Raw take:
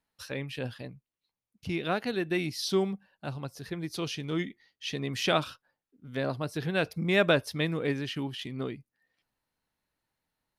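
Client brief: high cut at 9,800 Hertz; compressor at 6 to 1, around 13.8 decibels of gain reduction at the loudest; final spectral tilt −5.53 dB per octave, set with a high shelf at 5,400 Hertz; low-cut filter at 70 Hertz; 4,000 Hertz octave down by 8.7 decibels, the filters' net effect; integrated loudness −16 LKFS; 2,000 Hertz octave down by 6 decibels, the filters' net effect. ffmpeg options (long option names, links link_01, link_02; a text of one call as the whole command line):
ffmpeg -i in.wav -af "highpass=70,lowpass=9800,equalizer=frequency=2000:width_type=o:gain=-5.5,equalizer=frequency=4000:width_type=o:gain=-7.5,highshelf=frequency=5400:gain=-4.5,acompressor=threshold=-36dB:ratio=6,volume=25.5dB" out.wav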